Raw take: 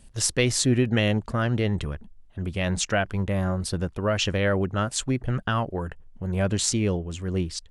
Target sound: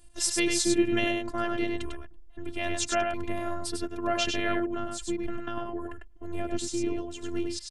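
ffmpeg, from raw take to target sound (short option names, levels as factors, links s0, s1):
-filter_complex "[0:a]aecho=1:1:99:0.596,asettb=1/sr,asplit=3[s0][s1][s2];[s0]atrim=end=4.594[s3];[s1]atrim=start=4.59:end=6.98,asetpts=PTS-STARTPTS,afade=t=in:d=0.004:c=qsin,afade=t=out:st=2.386:d=0.004:c=qsin,acrossover=split=460[s4][s5];[s5]acompressor=threshold=0.0158:ratio=2.5[s6];[s4][s6]amix=inputs=2:normalize=0[s7];[s2]atrim=start=6.976[s8];[s3][s7]acrossfade=d=0.004:c1=hsin:c2=qsin[s9];[s9][s8]acrossfade=d=0.004:c1=qsin:c2=hsin,afftfilt=real='hypot(re,im)*cos(PI*b)':imag='0':win_size=512:overlap=0.75"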